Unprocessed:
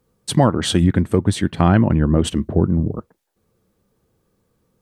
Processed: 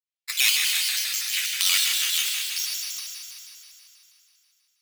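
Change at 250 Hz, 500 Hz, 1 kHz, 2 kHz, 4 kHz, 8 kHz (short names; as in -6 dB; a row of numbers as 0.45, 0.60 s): under -40 dB, under -40 dB, -20.5 dB, +5.0 dB, +7.5 dB, +8.5 dB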